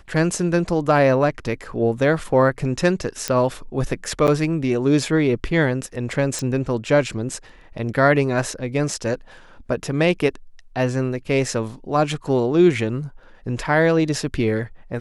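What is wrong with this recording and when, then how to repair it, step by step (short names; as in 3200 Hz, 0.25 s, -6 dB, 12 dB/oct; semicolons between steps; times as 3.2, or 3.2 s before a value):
3.28 pop -6 dBFS
4.27–4.28 gap 8.4 ms
6.39 pop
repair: de-click; interpolate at 4.27, 8.4 ms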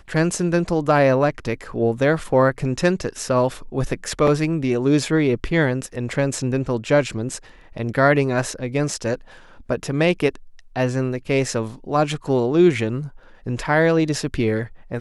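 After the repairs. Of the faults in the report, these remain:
none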